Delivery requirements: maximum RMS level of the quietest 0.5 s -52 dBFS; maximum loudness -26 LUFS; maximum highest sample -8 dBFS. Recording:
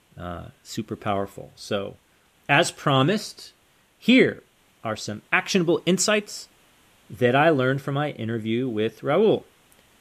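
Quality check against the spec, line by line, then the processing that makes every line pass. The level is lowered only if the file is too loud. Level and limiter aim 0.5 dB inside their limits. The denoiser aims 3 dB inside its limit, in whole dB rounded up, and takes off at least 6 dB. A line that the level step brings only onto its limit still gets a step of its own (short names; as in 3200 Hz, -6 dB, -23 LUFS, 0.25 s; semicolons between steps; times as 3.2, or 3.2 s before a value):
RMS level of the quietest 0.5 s -61 dBFS: OK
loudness -22.5 LUFS: fail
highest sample -4.5 dBFS: fail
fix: gain -4 dB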